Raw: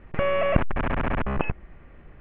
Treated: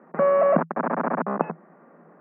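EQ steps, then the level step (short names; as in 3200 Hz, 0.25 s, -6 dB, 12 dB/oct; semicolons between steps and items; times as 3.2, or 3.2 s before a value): rippled Chebyshev high-pass 160 Hz, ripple 3 dB; LPF 1400 Hz 24 dB/oct; low shelf 430 Hz -5 dB; +7.5 dB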